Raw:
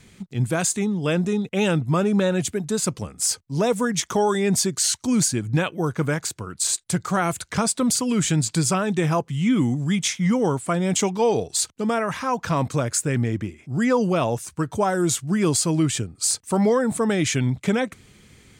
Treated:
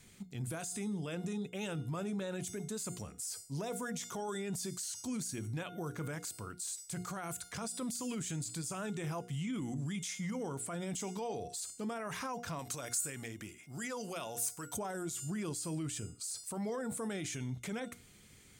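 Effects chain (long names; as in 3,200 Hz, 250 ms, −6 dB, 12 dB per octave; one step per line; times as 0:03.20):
high-shelf EQ 7,500 Hz +11.5 dB
mains-hum notches 60/120/180/240/300/360/420/480 Hz
tuned comb filter 710 Hz, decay 0.44 s, mix 70%
brickwall limiter −31.5 dBFS, peak gain reduction 18 dB
0:12.59–0:14.77: spectral tilt +2.5 dB per octave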